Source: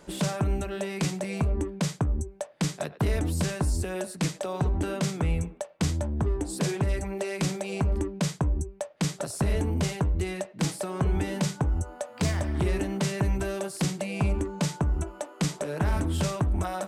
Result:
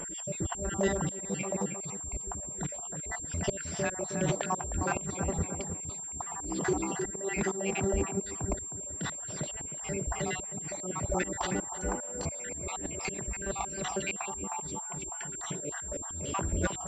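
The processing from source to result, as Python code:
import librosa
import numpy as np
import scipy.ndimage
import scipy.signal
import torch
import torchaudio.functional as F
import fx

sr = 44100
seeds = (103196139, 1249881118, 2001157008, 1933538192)

p1 = fx.spec_dropout(x, sr, seeds[0], share_pct=64)
p2 = fx.over_compress(p1, sr, threshold_db=-33.0, ratio=-1.0)
p3 = p2 + fx.echo_tape(p2, sr, ms=312, feedback_pct=58, wet_db=-4.0, lp_hz=1100.0, drive_db=19.0, wow_cents=20, dry=0)
p4 = fx.auto_swell(p3, sr, attack_ms=276.0)
p5 = fx.pwm(p4, sr, carrier_hz=7400.0)
y = p5 * librosa.db_to_amplitude(5.5)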